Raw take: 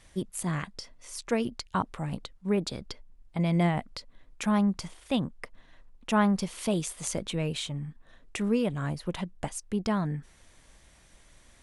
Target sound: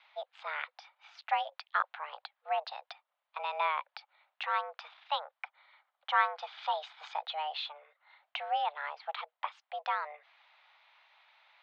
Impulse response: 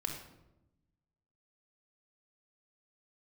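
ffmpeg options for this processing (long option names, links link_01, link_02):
-filter_complex "[0:a]asettb=1/sr,asplit=3[link_01][link_02][link_03];[link_01]atrim=end=5.394[link_04];[link_02]atrim=start=5.39:end=7.51,asetpts=PTS-STARTPTS,afade=type=in:duration=0.004:curve=qsin,afade=type=out:start_time=2.116:duration=0.004:curve=qsin,bandreject=frequency=2400:width=9.7[link_05];[link_03]atrim=start=7.506[link_06];[link_04][link_05]acrossfade=duration=0.004:curve1=hsin:curve2=qsin[link_07];[link_07][link_06]acrossfade=duration=0.004:curve1=qsin:curve2=hsin,highpass=frequency=400:width_type=q:width=0.5412,highpass=frequency=400:width_type=q:width=1.307,lowpass=frequency=3600:width_type=q:width=0.5176,lowpass=frequency=3600:width_type=q:width=0.7071,lowpass=frequency=3600:width_type=q:width=1.932,afreqshift=300"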